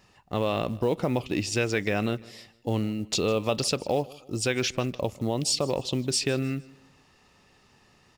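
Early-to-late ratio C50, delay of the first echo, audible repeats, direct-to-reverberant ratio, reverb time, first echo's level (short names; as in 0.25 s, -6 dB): none, 0.154 s, 2, none, none, -21.5 dB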